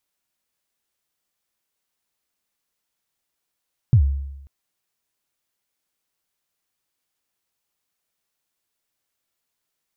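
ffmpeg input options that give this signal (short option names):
-f lavfi -i "aevalsrc='0.398*pow(10,-3*t/0.94)*sin(2*PI*(140*0.085/log(69/140)*(exp(log(69/140)*min(t,0.085)/0.085)-1)+69*max(t-0.085,0)))':d=0.54:s=44100"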